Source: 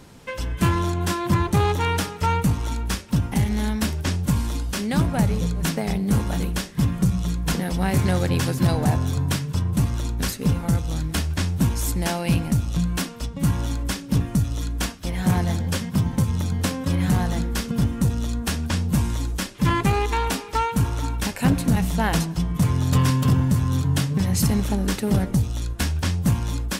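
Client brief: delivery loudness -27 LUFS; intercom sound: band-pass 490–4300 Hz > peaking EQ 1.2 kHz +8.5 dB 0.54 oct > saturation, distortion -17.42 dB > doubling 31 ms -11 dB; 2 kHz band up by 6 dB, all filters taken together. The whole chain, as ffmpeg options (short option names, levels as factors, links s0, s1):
-filter_complex "[0:a]highpass=490,lowpass=4300,equalizer=f=1200:t=o:w=0.54:g=8.5,equalizer=f=2000:t=o:g=5.5,asoftclip=threshold=0.211,asplit=2[s0][s1];[s1]adelay=31,volume=0.282[s2];[s0][s2]amix=inputs=2:normalize=0,volume=1.12"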